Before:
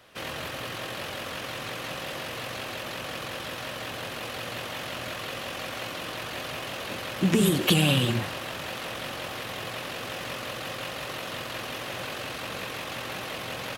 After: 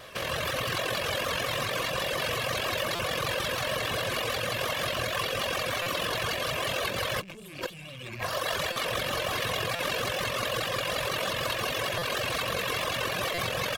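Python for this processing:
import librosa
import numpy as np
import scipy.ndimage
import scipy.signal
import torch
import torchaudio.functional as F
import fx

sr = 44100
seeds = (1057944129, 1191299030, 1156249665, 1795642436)

y = fx.rattle_buzz(x, sr, strikes_db=-31.0, level_db=-15.0)
y = fx.dereverb_blind(y, sr, rt60_s=1.2)
y = fx.tube_stage(y, sr, drive_db=21.0, bias=0.25)
y = fx.over_compress(y, sr, threshold_db=-40.0, ratio=-1.0)
y = y + 0.43 * np.pad(y, (int(1.8 * sr / 1000.0), 0))[:len(y)]
y = fx.vibrato(y, sr, rate_hz=6.5, depth_cents=54.0)
y = fx.buffer_glitch(y, sr, at_s=(2.95, 5.82, 8.72, 9.75, 11.98, 13.34), block=256, repeats=6)
y = y * librosa.db_to_amplitude(7.0)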